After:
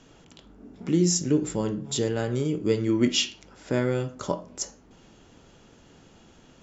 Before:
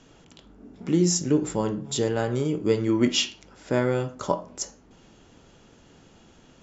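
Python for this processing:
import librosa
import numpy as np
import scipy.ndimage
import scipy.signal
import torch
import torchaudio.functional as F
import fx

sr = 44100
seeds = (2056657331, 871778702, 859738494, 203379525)

y = fx.dynamic_eq(x, sr, hz=900.0, q=1.0, threshold_db=-40.0, ratio=4.0, max_db=-6)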